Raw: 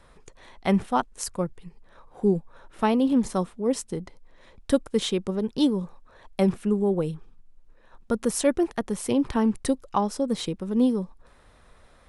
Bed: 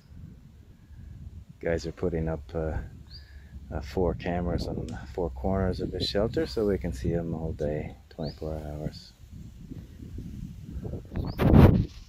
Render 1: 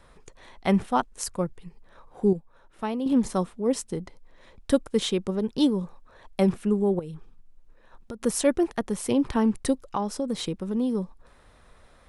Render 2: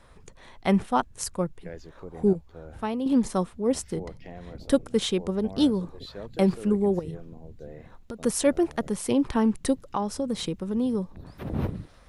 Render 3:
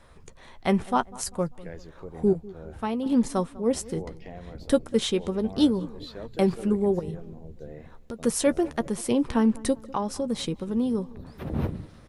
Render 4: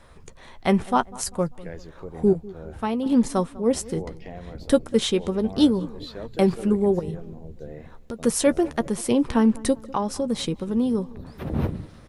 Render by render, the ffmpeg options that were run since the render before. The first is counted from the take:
-filter_complex "[0:a]asettb=1/sr,asplit=3[a][b][c];[a]atrim=end=6.994[d];[b]atrim=start=6.99:end=8.22,asetpts=PTS-STARTPTS,afade=t=in:d=0.004:c=qsin,afade=t=out:st=1.226:d=0.004:c=qsin,acompressor=threshold=-33dB:ratio=6:attack=3.2:release=140:knee=1:detection=peak[e];[c]atrim=start=8.216[f];[d][e]acrossfade=d=0.004:c1=hsin:c2=qsin[g];[g][f]acrossfade=d=0.004:c1=qsin:c2=hsin,asettb=1/sr,asplit=3[h][i][j];[h]atrim=end=9.854[k];[i]atrim=start=9.85:end=10.95,asetpts=PTS-STARTPTS,afade=t=in:d=0.004:c=qsin,afade=t=out:st=1.096:d=0.004:c=qsin,acompressor=threshold=-23dB:ratio=3:attack=3.2:release=140:knee=1:detection=peak[l];[j]atrim=start=10.946[m];[k][l]acrossfade=d=0.004:c1=hsin:c2=qsin[n];[n][m]acrossfade=d=0.004:c1=qsin:c2=hsin,asplit=3[o][p][q];[o]atrim=end=2.332[r];[p]atrim=start=2.328:end=3.062,asetpts=PTS-STARTPTS,volume=-7.5dB[s];[q]atrim=start=3.058[t];[r][s]acrossfade=d=0.004:c1=hsin:c2=hsin[u];[u][t]acrossfade=d=0.004:c1=hsin:c2=hsin"
-filter_complex "[1:a]volume=-13dB[a];[0:a][a]amix=inputs=2:normalize=0"
-filter_complex "[0:a]asplit=2[a][b];[b]adelay=13,volume=-12dB[c];[a][c]amix=inputs=2:normalize=0,asplit=2[d][e];[e]adelay=197,lowpass=f=1.6k:p=1,volume=-20dB,asplit=2[f][g];[g]adelay=197,lowpass=f=1.6k:p=1,volume=0.46,asplit=2[h][i];[i]adelay=197,lowpass=f=1.6k:p=1,volume=0.46[j];[d][f][h][j]amix=inputs=4:normalize=0"
-af "volume=3dB"

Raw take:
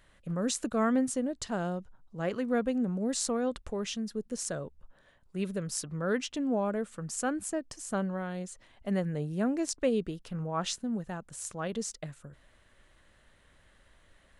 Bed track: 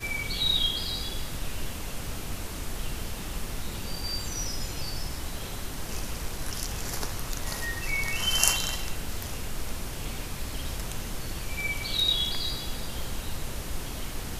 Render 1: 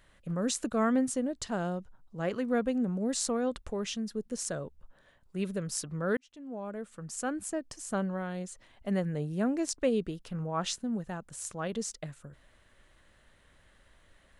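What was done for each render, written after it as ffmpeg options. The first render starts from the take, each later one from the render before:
-filter_complex "[0:a]asplit=2[a][b];[a]atrim=end=6.17,asetpts=PTS-STARTPTS,afade=t=out:st=6.166:d=0.004:c=hsin[c];[b]atrim=start=6.17,asetpts=PTS-STARTPTS,afade=t=in:d=1.98:c=qsin[d];[c][d]concat=n=2:v=0:a=1"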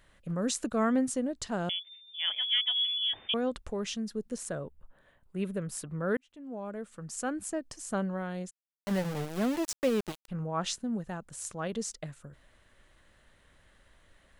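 -filter_complex "[0:a]asettb=1/sr,asplit=3[a][b][c];[a]atrim=end=1.694[d];[b]atrim=start=1.69:end=3.34,asetpts=PTS-STARTPTS,afade=t=in:d=0.004:c=qsin,afade=t=out:st=1.646:d=0.004:c=qsin,lowpass=f=3.1k:t=q:w=0.5098,lowpass=f=3.1k:t=q:w=0.6013,lowpass=f=3.1k:t=q:w=0.9,lowpass=f=3.1k:t=q:w=2.563,afreqshift=-3600[e];[c]atrim=start=3.336[f];[d][e]acrossfade=d=0.004:c1=hsin:c2=qsin[g];[g][f]acrossfade=d=0.004:c1=qsin:c2=hsin,asettb=1/sr,asplit=3[h][i][j];[h]atrim=end=4.384[k];[i]atrim=start=4.38:end=6.44,asetpts=PTS-STARTPTS,afade=t=in:d=0.004:c=qsin,afade=t=out:st=2.056:d=0.004:c=qsin,equalizer=f=5.4k:w=1.3:g=-10.5[l];[j]atrim=start=6.436[m];[k][l]acrossfade=d=0.004:c1=hsin:c2=qsin[n];[n][m]acrossfade=d=0.004:c1=qsin:c2=hsin,asplit=3[o][p][q];[o]afade=t=out:st=8.49:d=0.02[r];[p]aeval=exprs='val(0)*gte(abs(val(0)),0.0224)':c=same,afade=t=in:st=8.49:d=0.02,afade=t=out:st=10.28:d=0.02[s];[q]afade=t=in:st=10.28:d=0.02[t];[r][s][t]amix=inputs=3:normalize=0"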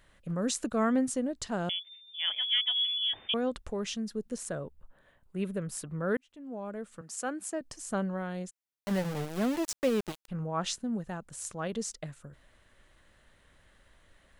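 -filter_complex "[0:a]asettb=1/sr,asplit=3[a][b][c];[a]atrim=end=7.014[d];[b]atrim=start=7.01:end=7.61,asetpts=PTS-STARTPTS,afade=t=in:d=0.004:c=qsin,afade=t=out:st=0.596:d=0.004:c=qsin,highpass=290[e];[c]atrim=start=7.606[f];[d][e]acrossfade=d=0.004:c1=hsin:c2=qsin[g];[g][f]acrossfade=d=0.004:c1=qsin:c2=hsin"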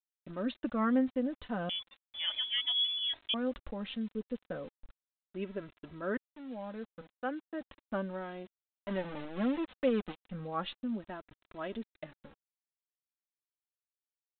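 -af "aresample=8000,aeval=exprs='val(0)*gte(abs(val(0)),0.00398)':c=same,aresample=44100,flanger=delay=3:depth=1:regen=-12:speed=0.35:shape=sinusoidal"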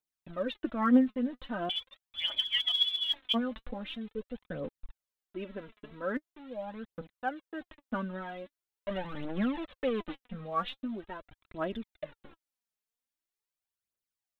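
-af "aphaser=in_gain=1:out_gain=1:delay=4.9:decay=0.63:speed=0.43:type=triangular"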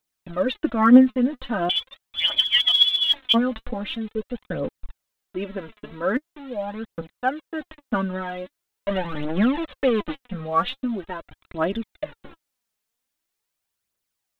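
-af "volume=10.5dB"

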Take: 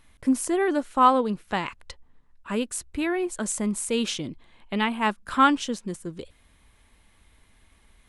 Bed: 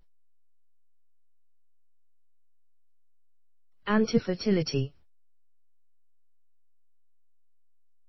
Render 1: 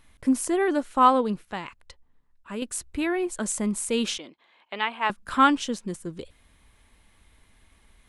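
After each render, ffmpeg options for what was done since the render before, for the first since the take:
-filter_complex "[0:a]asettb=1/sr,asplit=3[a][b][c];[a]atrim=end=4.184[d];[b]atrim=start=4.18:end=5.1,asetpts=PTS-STARTPTS,afade=t=in:d=0.004:c=qsin,afade=t=out:st=0.916:d=0.004:c=qsin,highpass=560,lowpass=4.4k[e];[c]atrim=start=5.096[f];[d][e]acrossfade=d=0.004:c1=hsin:c2=qsin[g];[g][f]acrossfade=d=0.004:c1=qsin:c2=hsin,asplit=3[h][i][j];[h]atrim=end=1.452[k];[i]atrim=start=1.448:end=2.622,asetpts=PTS-STARTPTS,volume=-6.5dB[l];[j]atrim=start=2.618[m];[k][l]acrossfade=d=0.004:c1=hsin:c2=hsin[n];[n][m]acrossfade=d=0.004:c1=hsin:c2=hsin"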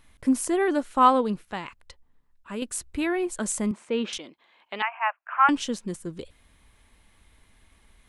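-filter_complex "[0:a]asettb=1/sr,asplit=3[a][b][c];[a]atrim=end=3.714[d];[b]atrim=start=3.71:end=4.13,asetpts=PTS-STARTPTS,afade=t=in:d=0.004:c=qsin,afade=t=out:st=0.416:d=0.004:c=qsin,highpass=210,lowpass=2.3k[e];[c]atrim=start=4.126[f];[d][e]acrossfade=d=0.004:c1=hsin:c2=qsin[g];[g][f]acrossfade=d=0.004:c1=qsin:c2=hsin,asettb=1/sr,asplit=3[h][i][j];[h]atrim=end=4.824[k];[i]atrim=start=4.82:end=5.49,asetpts=PTS-STARTPTS,afade=t=in:d=0.004:c=qsin,afade=t=out:st=0.666:d=0.004:c=qsin,asuperpass=centerf=1300:order=20:qfactor=0.61[l];[j]atrim=start=5.486[m];[k][l]acrossfade=d=0.004:c1=hsin:c2=qsin[n];[n][m]acrossfade=d=0.004:c1=qsin:c2=hsin"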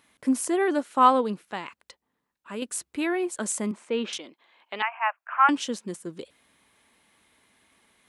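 -af "highpass=210"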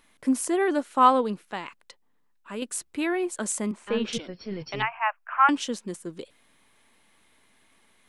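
-filter_complex "[1:a]volume=-9.5dB[a];[0:a][a]amix=inputs=2:normalize=0"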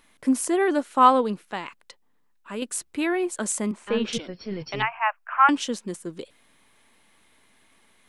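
-af "volume=2dB"

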